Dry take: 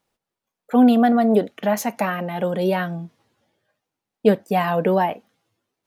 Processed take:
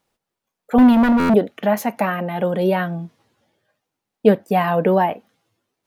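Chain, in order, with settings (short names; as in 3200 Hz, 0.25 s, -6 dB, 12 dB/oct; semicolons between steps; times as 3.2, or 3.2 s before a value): 0.78–1.34 minimum comb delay 3.5 ms; dynamic EQ 6500 Hz, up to -8 dB, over -48 dBFS, Q 0.81; stuck buffer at 1.19, samples 512, times 8; gain +2.5 dB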